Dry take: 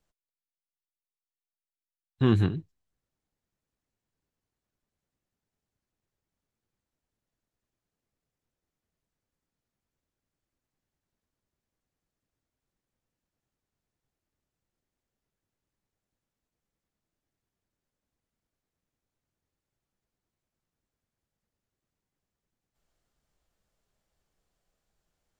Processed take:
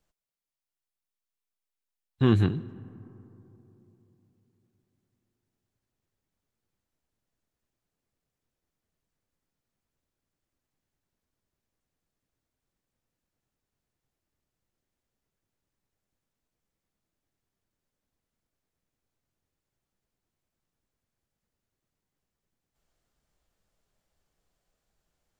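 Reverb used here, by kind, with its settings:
comb and all-pass reverb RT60 3.5 s, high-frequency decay 0.3×, pre-delay 70 ms, DRR 19.5 dB
level +1 dB

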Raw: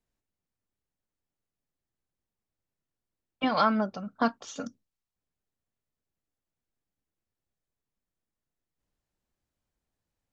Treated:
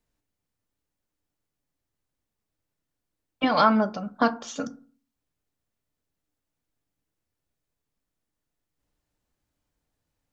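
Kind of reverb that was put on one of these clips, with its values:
feedback delay network reverb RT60 0.42 s, low-frequency decay 1.25×, high-frequency decay 0.45×, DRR 10.5 dB
level +4.5 dB

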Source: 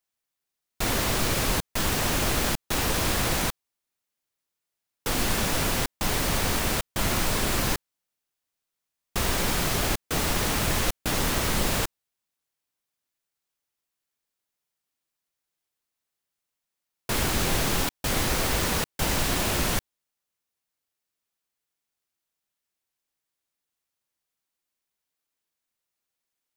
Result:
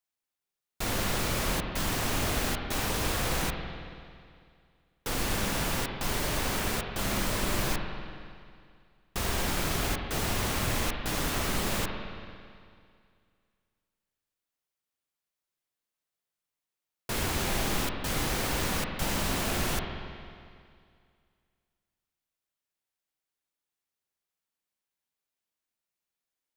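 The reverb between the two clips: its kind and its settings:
spring reverb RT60 2.2 s, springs 45/55 ms, chirp 30 ms, DRR 3 dB
level −5.5 dB

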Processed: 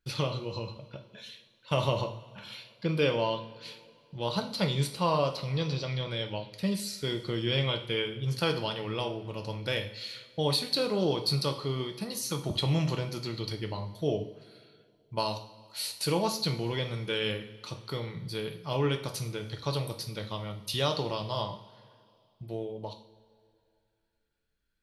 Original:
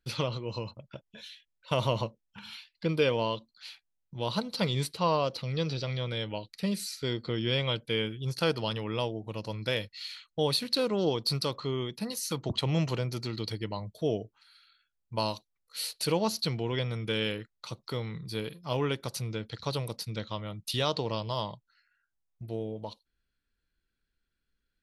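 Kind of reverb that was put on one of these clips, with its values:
coupled-rooms reverb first 0.47 s, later 2.5 s, from −18 dB, DRR 4.5 dB
level −1 dB

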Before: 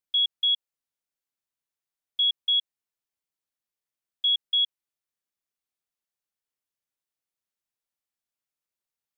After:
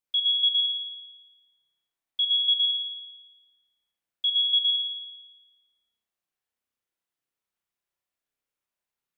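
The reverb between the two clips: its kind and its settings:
spring reverb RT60 1.2 s, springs 31 ms, chirp 55 ms, DRR −3.5 dB
level −1 dB

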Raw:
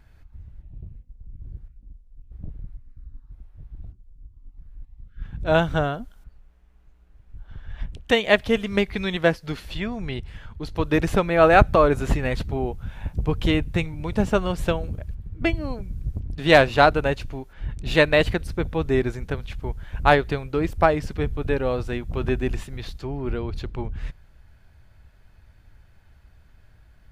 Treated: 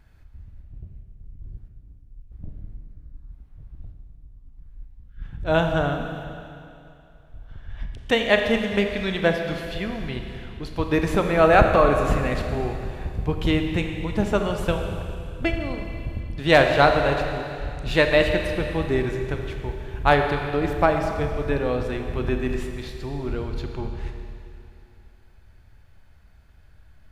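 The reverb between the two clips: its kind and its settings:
four-comb reverb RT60 2.6 s, combs from 28 ms, DRR 4 dB
level −1.5 dB

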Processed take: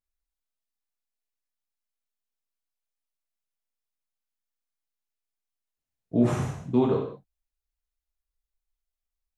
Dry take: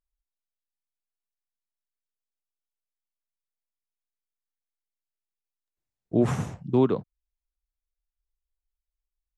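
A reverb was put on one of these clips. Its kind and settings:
reverb whose tail is shaped and stops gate 230 ms falling, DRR −2 dB
level −4 dB

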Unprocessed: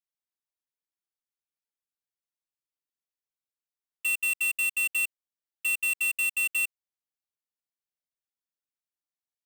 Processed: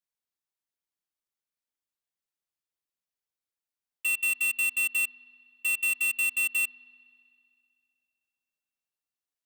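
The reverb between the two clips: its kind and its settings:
spring reverb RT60 2.5 s, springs 52 ms, chirp 45 ms, DRR 17.5 dB

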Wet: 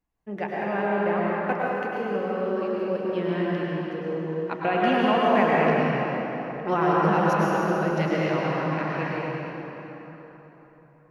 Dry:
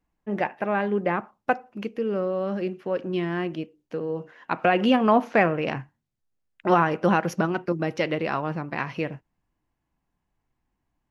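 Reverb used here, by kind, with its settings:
dense smooth reverb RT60 3.9 s, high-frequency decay 0.65×, pre-delay 90 ms, DRR −6 dB
level −6 dB

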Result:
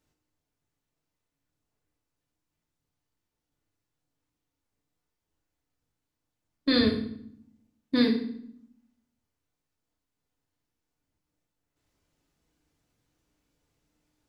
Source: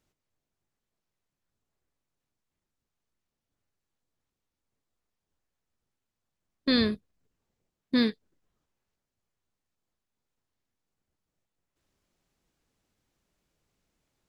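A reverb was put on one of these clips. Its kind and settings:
feedback delay network reverb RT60 0.66 s, low-frequency decay 1.6×, high-frequency decay 0.85×, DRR 0.5 dB
level −1.5 dB

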